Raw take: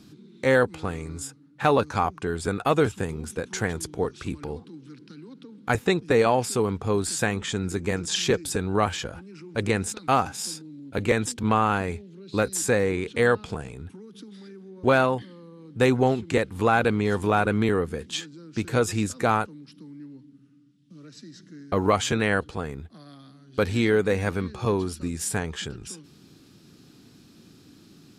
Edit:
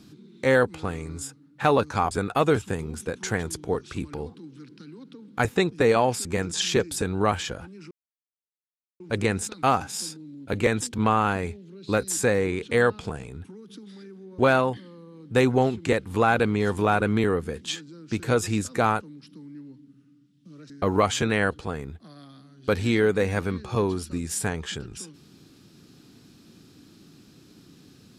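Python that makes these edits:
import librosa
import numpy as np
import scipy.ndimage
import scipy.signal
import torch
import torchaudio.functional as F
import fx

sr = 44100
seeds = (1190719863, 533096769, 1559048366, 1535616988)

y = fx.edit(x, sr, fx.cut(start_s=2.11, length_s=0.3),
    fx.cut(start_s=6.55, length_s=1.24),
    fx.insert_silence(at_s=9.45, length_s=1.09),
    fx.cut(start_s=21.15, length_s=0.45), tone=tone)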